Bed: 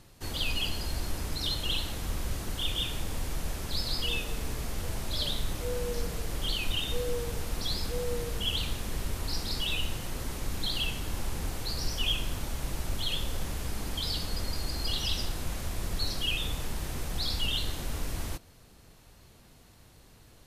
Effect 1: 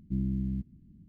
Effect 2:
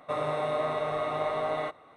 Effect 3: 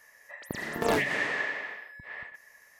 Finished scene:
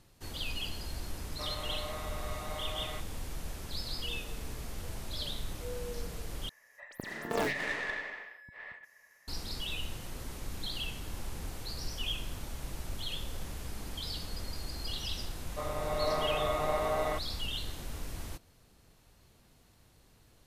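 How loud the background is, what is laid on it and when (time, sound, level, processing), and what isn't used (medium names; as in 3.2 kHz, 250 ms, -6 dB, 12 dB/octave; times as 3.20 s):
bed -6.5 dB
1.30 s: add 2 -11.5 dB + tilt EQ +3.5 dB/octave
6.49 s: replace with 3 -5.5 dB + tracing distortion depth 0.13 ms
15.48 s: add 2 -8 dB + level rider gain up to 6.5 dB
not used: 1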